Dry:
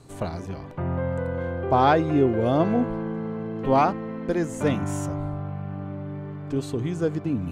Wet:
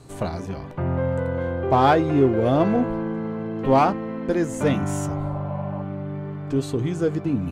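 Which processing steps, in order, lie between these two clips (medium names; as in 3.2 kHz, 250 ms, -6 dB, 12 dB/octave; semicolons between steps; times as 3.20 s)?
spectral replace 5.10–5.79 s, 480–1100 Hz before; in parallel at -8 dB: hard clipper -22 dBFS, distortion -8 dB; on the sum: doubling 15 ms -12.5 dB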